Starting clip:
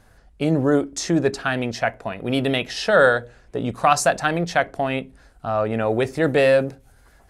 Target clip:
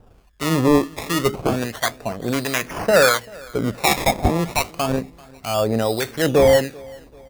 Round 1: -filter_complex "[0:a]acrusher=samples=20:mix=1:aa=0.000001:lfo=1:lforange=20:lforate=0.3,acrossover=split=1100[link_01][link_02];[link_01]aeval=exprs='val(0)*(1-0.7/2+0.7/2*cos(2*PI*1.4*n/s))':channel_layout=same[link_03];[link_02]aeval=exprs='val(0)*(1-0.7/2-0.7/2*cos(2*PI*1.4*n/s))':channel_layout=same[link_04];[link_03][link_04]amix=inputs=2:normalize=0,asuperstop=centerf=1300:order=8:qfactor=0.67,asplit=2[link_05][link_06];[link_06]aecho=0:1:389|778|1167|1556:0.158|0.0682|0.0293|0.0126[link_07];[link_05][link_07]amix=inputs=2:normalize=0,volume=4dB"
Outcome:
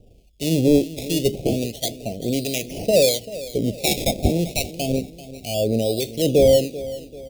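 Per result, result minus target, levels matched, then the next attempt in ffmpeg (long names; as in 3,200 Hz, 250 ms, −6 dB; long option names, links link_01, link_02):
1,000 Hz band −10.5 dB; echo-to-direct +8 dB
-filter_complex "[0:a]acrusher=samples=20:mix=1:aa=0.000001:lfo=1:lforange=20:lforate=0.3,acrossover=split=1100[link_01][link_02];[link_01]aeval=exprs='val(0)*(1-0.7/2+0.7/2*cos(2*PI*1.4*n/s))':channel_layout=same[link_03];[link_02]aeval=exprs='val(0)*(1-0.7/2-0.7/2*cos(2*PI*1.4*n/s))':channel_layout=same[link_04];[link_03][link_04]amix=inputs=2:normalize=0,asplit=2[link_05][link_06];[link_06]aecho=0:1:389|778|1167|1556:0.158|0.0682|0.0293|0.0126[link_07];[link_05][link_07]amix=inputs=2:normalize=0,volume=4dB"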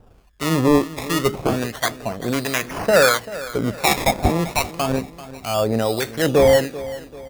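echo-to-direct +8 dB
-filter_complex "[0:a]acrusher=samples=20:mix=1:aa=0.000001:lfo=1:lforange=20:lforate=0.3,acrossover=split=1100[link_01][link_02];[link_01]aeval=exprs='val(0)*(1-0.7/2+0.7/2*cos(2*PI*1.4*n/s))':channel_layout=same[link_03];[link_02]aeval=exprs='val(0)*(1-0.7/2-0.7/2*cos(2*PI*1.4*n/s))':channel_layout=same[link_04];[link_03][link_04]amix=inputs=2:normalize=0,asplit=2[link_05][link_06];[link_06]aecho=0:1:389|778|1167:0.0631|0.0271|0.0117[link_07];[link_05][link_07]amix=inputs=2:normalize=0,volume=4dB"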